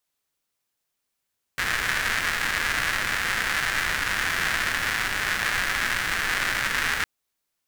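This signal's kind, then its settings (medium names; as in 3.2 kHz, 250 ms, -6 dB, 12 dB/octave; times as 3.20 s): rain from filtered ticks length 5.46 s, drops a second 300, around 1.7 kHz, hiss -10 dB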